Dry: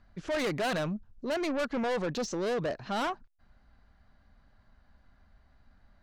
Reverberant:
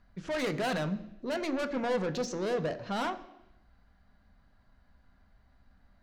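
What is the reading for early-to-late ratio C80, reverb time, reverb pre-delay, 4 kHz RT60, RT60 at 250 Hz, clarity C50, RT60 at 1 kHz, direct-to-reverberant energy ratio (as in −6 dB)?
15.5 dB, 0.85 s, 3 ms, 0.85 s, 0.90 s, 14.0 dB, 0.85 s, 8.0 dB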